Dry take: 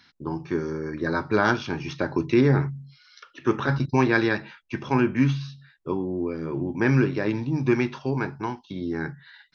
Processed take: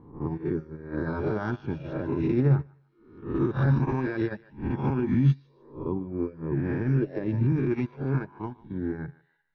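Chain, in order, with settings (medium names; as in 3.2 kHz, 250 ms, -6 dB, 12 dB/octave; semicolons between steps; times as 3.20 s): reverse spectral sustain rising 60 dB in 1.03 s; reverb removal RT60 0.76 s; level-controlled noise filter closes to 1.8 kHz, open at -16 dBFS; tilt EQ -4 dB/octave; peak limiter -12.5 dBFS, peak gain reduction 11 dB; thinning echo 149 ms, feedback 36%, high-pass 720 Hz, level -9.5 dB; upward expansion 2.5:1, over -28 dBFS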